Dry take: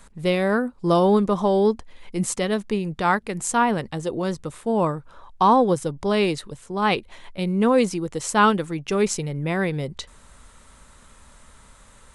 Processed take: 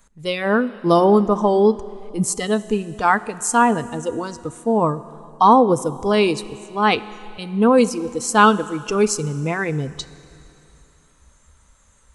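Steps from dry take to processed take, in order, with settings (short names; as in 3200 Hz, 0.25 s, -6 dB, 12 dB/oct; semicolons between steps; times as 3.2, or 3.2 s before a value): spectral noise reduction 13 dB; Schroeder reverb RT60 2.9 s, combs from 26 ms, DRR 16.5 dB; gain +4.5 dB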